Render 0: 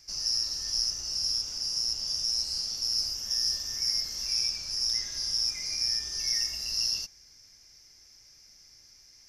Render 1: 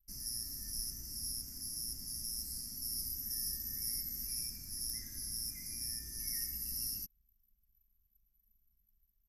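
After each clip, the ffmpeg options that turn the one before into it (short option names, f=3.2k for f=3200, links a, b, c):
-af "firequalizer=gain_entry='entry(160,0);entry(230,5);entry(480,-18);entry(1200,-20);entry(1900,-10);entry(3000,-28);entry(12000,15)':delay=0.05:min_phase=1,anlmdn=0.000631"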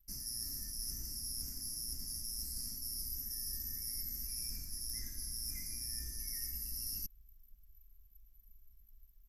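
-af "asubboost=boost=2.5:cutoff=73,areverse,acompressor=threshold=-46dB:ratio=6,areverse,volume=7.5dB"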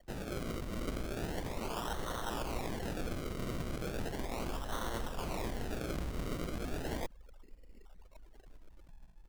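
-filter_complex "[0:a]acrossover=split=5500[a][b];[b]alimiter=level_in=12dB:limit=-24dB:level=0:latency=1:release=98,volume=-12dB[c];[a][c]amix=inputs=2:normalize=0,acrusher=samples=35:mix=1:aa=0.000001:lfo=1:lforange=35:lforate=0.36,volume=5.5dB"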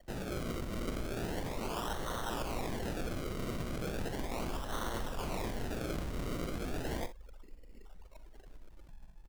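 -filter_complex "[0:a]asplit=2[a][b];[b]asoftclip=type=tanh:threshold=-39.5dB,volume=-3dB[c];[a][c]amix=inputs=2:normalize=0,aecho=1:1:43|60:0.188|0.2,volume=-2dB"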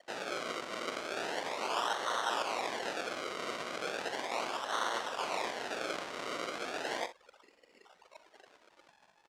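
-af "highpass=640,lowpass=6.2k,volume=7.5dB"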